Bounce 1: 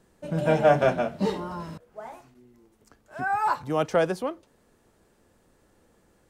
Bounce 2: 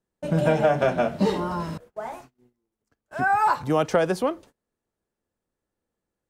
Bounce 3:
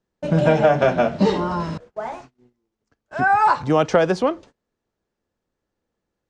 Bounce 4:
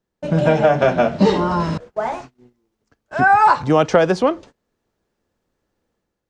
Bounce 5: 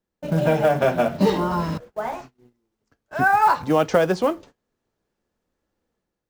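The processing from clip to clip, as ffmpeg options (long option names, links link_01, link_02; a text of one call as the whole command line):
ffmpeg -i in.wav -af "agate=range=-28dB:threshold=-51dB:ratio=16:detection=peak,acompressor=threshold=-23dB:ratio=6,volume=6.5dB" out.wav
ffmpeg -i in.wav -af "lowpass=frequency=6800:width=0.5412,lowpass=frequency=6800:width=1.3066,volume=4.5dB" out.wav
ffmpeg -i in.wav -af "dynaudnorm=framelen=100:gausssize=7:maxgain=6.5dB" out.wav
ffmpeg -i in.wav -af "flanger=delay=3.6:depth=4.3:regen=-70:speed=0.53:shape=sinusoidal,acrusher=bits=7:mode=log:mix=0:aa=0.000001" out.wav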